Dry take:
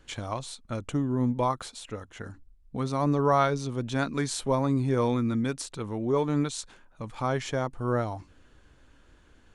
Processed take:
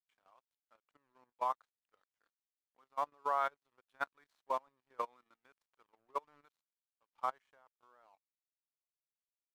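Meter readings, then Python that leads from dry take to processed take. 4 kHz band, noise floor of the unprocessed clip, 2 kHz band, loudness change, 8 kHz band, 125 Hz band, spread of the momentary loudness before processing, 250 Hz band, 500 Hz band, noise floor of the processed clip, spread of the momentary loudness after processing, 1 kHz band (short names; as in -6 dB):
-22.0 dB, -59 dBFS, -11.5 dB, -11.5 dB, under -25 dB, under -40 dB, 15 LU, -37.5 dB, -18.0 dB, under -85 dBFS, 9 LU, -8.0 dB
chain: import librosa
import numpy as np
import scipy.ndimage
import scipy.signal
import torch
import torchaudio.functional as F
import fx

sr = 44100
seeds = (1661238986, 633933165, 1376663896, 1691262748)

y = fx.tracing_dist(x, sr, depth_ms=0.02)
y = fx.ladder_bandpass(y, sr, hz=1300.0, resonance_pct=20)
y = np.sign(y) * np.maximum(np.abs(y) - 10.0 ** (-59.0 / 20.0), 0.0)
y = fx.level_steps(y, sr, step_db=14)
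y = fx.upward_expand(y, sr, threshold_db=-55.0, expansion=2.5)
y = F.gain(torch.from_numpy(y), 10.5).numpy()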